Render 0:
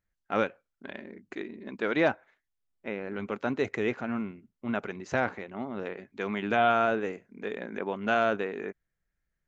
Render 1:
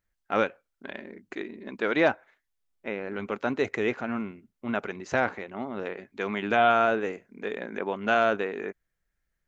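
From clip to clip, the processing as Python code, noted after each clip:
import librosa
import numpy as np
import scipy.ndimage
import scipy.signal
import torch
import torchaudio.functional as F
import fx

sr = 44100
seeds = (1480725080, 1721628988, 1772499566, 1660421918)

y = fx.peak_eq(x, sr, hz=140.0, db=-4.0, octaves=1.9)
y = F.gain(torch.from_numpy(y), 3.0).numpy()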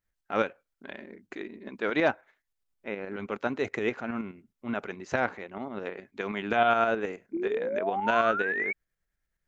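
y = fx.spec_paint(x, sr, seeds[0], shape='rise', start_s=7.33, length_s=1.4, low_hz=320.0, high_hz=2300.0, level_db=-28.0)
y = fx.tremolo_shape(y, sr, shape='saw_up', hz=9.5, depth_pct=50)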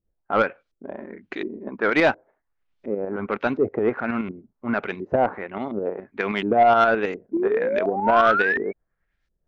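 y = fx.filter_lfo_lowpass(x, sr, shape='saw_up', hz=1.4, low_hz=340.0, high_hz=4900.0, q=1.5)
y = 10.0 ** (-16.0 / 20.0) * np.tanh(y / 10.0 ** (-16.0 / 20.0))
y = F.gain(torch.from_numpy(y), 7.5).numpy()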